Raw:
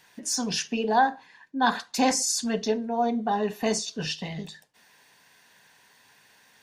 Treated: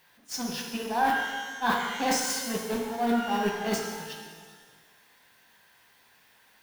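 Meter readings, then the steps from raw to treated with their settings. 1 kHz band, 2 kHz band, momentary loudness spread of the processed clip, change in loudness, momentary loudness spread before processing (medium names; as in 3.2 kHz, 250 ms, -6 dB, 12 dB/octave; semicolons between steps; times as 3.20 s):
-2.5 dB, +1.5 dB, 11 LU, -2.5 dB, 12 LU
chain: jump at every zero crossing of -26 dBFS; in parallel at -0.5 dB: peak limiter -17.5 dBFS, peak gain reduction 8 dB; on the sum: gate -16 dBFS, range -41 dB; peaking EQ 7.2 kHz -8.5 dB 1.2 oct; reverse; compression 4:1, threshold -32 dBFS, peak gain reduction 16.5 dB; reverse; bass shelf 490 Hz -3 dB; pitch-shifted reverb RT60 1.5 s, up +12 st, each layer -8 dB, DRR 1.5 dB; trim +5.5 dB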